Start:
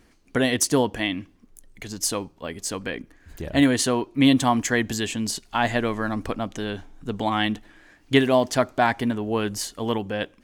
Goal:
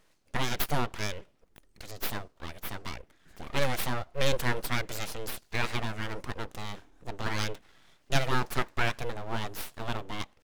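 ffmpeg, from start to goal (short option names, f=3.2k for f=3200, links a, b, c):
-af "lowshelf=f=96:g=-8.5,aeval=exprs='abs(val(0))':c=same,atempo=1,volume=-5dB"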